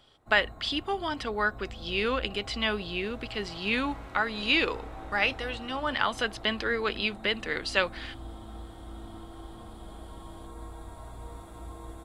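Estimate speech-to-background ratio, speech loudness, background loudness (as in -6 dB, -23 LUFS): 16.0 dB, -29.0 LUFS, -45.0 LUFS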